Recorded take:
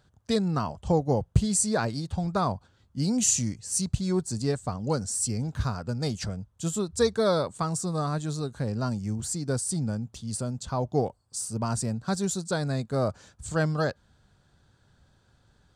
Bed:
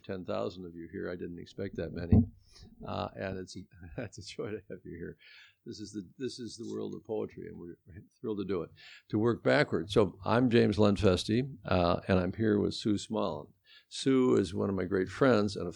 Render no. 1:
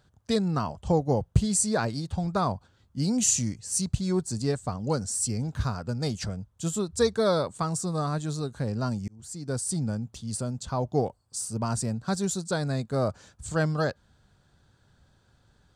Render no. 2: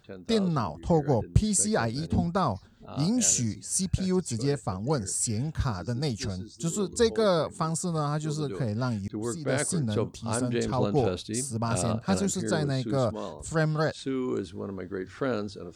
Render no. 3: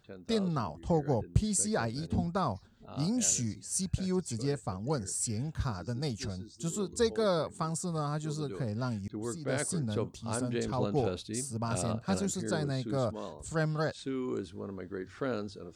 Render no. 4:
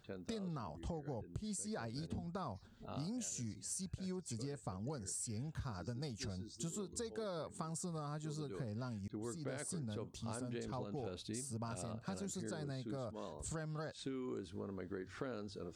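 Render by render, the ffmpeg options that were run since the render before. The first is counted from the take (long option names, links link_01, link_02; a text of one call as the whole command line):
ffmpeg -i in.wav -filter_complex "[0:a]asplit=2[link_01][link_02];[link_01]atrim=end=9.08,asetpts=PTS-STARTPTS,afade=type=out:start_time=9.076:duration=0.004:curve=hsin[link_03];[link_02]atrim=start=9.08,asetpts=PTS-STARTPTS,afade=type=in:duration=0.6[link_04];[link_03][link_04]concat=n=2:v=0:a=1" out.wav
ffmpeg -i in.wav -i bed.wav -filter_complex "[1:a]volume=-4dB[link_01];[0:a][link_01]amix=inputs=2:normalize=0" out.wav
ffmpeg -i in.wav -af "volume=-5dB" out.wav
ffmpeg -i in.wav -af "alimiter=limit=-24dB:level=0:latency=1:release=190,acompressor=threshold=-41dB:ratio=6" out.wav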